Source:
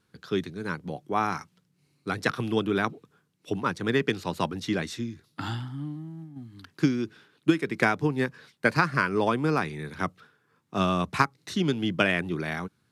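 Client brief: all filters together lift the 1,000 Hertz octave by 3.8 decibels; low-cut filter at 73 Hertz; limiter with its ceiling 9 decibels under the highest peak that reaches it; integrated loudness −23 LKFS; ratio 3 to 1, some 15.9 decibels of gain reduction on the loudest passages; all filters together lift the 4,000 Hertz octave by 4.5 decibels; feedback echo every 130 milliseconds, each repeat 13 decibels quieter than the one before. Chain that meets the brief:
high-pass filter 73 Hz
parametric band 1,000 Hz +4.5 dB
parametric band 4,000 Hz +5.5 dB
downward compressor 3 to 1, threshold −38 dBFS
brickwall limiter −27 dBFS
repeating echo 130 ms, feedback 22%, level −13 dB
level +17.5 dB

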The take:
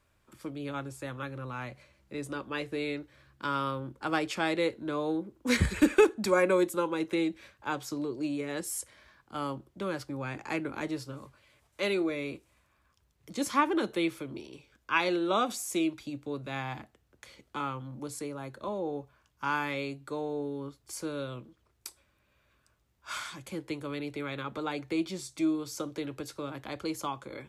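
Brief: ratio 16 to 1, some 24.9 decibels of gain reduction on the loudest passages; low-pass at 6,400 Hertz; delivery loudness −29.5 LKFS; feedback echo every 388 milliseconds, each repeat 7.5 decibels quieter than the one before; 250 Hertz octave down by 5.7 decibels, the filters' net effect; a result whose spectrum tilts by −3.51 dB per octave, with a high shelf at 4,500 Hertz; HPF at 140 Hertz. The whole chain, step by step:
high-pass filter 140 Hz
low-pass filter 6,400 Hz
parametric band 250 Hz −8 dB
high-shelf EQ 4,500 Hz +4.5 dB
downward compressor 16 to 1, threshold −43 dBFS
repeating echo 388 ms, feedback 42%, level −7.5 dB
level +18 dB

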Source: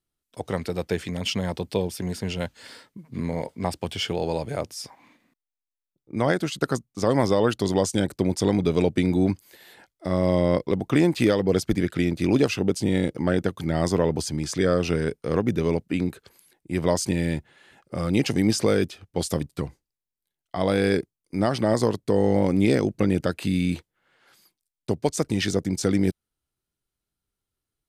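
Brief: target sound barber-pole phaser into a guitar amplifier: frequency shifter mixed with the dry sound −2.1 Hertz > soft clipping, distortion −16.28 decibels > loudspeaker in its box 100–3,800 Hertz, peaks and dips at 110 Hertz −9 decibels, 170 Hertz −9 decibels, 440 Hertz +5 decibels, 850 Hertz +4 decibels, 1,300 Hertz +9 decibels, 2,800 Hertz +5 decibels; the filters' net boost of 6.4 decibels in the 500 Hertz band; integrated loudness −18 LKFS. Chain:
parametric band 500 Hz +4 dB
frequency shifter mixed with the dry sound −2.1 Hz
soft clipping −15.5 dBFS
loudspeaker in its box 100–3,800 Hz, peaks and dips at 110 Hz −9 dB, 170 Hz −9 dB, 440 Hz +5 dB, 850 Hz +4 dB, 1,300 Hz +9 dB, 2,800 Hz +5 dB
level +8 dB

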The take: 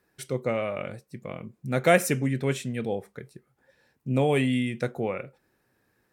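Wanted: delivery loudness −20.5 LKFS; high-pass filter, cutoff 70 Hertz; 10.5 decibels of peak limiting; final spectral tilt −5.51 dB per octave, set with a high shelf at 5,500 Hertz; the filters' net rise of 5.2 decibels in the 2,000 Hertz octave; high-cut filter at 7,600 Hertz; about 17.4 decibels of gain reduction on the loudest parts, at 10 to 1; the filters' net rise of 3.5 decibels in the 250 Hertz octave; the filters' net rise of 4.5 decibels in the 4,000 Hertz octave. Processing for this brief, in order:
high-pass filter 70 Hz
low-pass filter 7,600 Hz
parametric band 250 Hz +4 dB
parametric band 2,000 Hz +5.5 dB
parametric band 4,000 Hz +6 dB
high-shelf EQ 5,500 Hz −6 dB
downward compressor 10 to 1, threshold −29 dBFS
level +17.5 dB
brickwall limiter −8.5 dBFS

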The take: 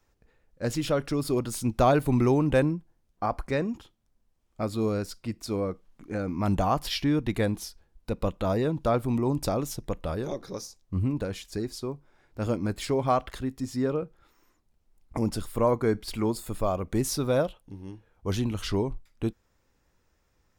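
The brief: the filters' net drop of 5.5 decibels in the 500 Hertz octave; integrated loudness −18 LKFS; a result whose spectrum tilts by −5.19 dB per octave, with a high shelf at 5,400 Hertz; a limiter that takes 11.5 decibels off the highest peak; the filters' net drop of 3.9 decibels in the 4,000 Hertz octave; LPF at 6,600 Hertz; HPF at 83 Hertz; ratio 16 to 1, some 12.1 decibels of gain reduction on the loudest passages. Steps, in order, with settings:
high-pass filter 83 Hz
low-pass filter 6,600 Hz
parametric band 500 Hz −7 dB
parametric band 4,000 Hz −6 dB
high-shelf EQ 5,400 Hz +3.5 dB
downward compressor 16 to 1, threshold −32 dBFS
level +25 dB
brickwall limiter −8 dBFS

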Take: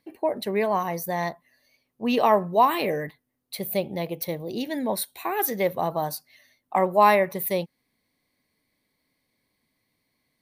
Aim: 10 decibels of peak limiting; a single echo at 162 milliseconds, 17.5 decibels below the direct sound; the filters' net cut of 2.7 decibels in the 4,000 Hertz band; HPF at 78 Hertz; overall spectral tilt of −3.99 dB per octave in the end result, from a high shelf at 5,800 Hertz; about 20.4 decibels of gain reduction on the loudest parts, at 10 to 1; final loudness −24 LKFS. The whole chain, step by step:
high-pass filter 78 Hz
parametric band 4,000 Hz −6 dB
high-shelf EQ 5,800 Hz +8 dB
downward compressor 10 to 1, threshold −34 dBFS
brickwall limiter −29 dBFS
single-tap delay 162 ms −17.5 dB
level +16 dB

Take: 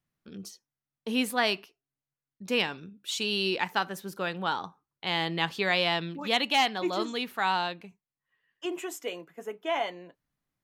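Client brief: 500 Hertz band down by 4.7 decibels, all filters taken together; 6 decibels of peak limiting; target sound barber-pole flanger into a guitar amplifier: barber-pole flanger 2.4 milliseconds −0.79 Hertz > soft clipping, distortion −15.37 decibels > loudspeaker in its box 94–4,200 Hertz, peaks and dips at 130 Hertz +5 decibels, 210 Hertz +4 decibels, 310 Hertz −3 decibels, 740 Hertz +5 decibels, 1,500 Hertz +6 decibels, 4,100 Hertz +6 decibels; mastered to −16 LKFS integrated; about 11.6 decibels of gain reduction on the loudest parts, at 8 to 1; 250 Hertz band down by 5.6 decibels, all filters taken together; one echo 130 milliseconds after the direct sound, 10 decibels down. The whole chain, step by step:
parametric band 250 Hz −7 dB
parametric band 500 Hz −7 dB
downward compressor 8 to 1, threshold −34 dBFS
brickwall limiter −27.5 dBFS
single-tap delay 130 ms −10 dB
barber-pole flanger 2.4 ms −0.79 Hz
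soft clipping −37.5 dBFS
loudspeaker in its box 94–4,200 Hz, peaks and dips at 130 Hz +5 dB, 210 Hz +4 dB, 310 Hz −3 dB, 740 Hz +5 dB, 1,500 Hz +6 dB, 4,100 Hz +6 dB
level +27.5 dB

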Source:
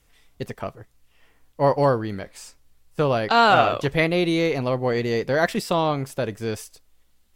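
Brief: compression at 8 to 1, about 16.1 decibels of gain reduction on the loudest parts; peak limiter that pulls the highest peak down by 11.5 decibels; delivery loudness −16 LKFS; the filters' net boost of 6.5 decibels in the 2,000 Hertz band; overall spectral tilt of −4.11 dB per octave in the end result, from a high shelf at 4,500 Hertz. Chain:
parametric band 2,000 Hz +7 dB
high-shelf EQ 4,500 Hz +8 dB
downward compressor 8 to 1, threshold −26 dBFS
level +17.5 dB
brickwall limiter −5.5 dBFS

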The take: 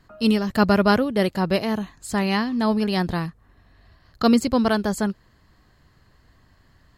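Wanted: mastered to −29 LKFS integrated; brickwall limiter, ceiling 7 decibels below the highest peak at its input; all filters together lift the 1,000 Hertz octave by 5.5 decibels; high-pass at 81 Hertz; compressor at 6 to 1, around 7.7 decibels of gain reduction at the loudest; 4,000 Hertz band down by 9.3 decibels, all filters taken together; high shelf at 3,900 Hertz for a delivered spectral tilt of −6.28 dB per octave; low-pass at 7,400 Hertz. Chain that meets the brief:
high-pass filter 81 Hz
low-pass filter 7,400 Hz
parametric band 1,000 Hz +8 dB
high-shelf EQ 3,900 Hz −9 dB
parametric band 4,000 Hz −7 dB
downward compressor 6 to 1, threshold −19 dBFS
level −1.5 dB
brickwall limiter −18.5 dBFS

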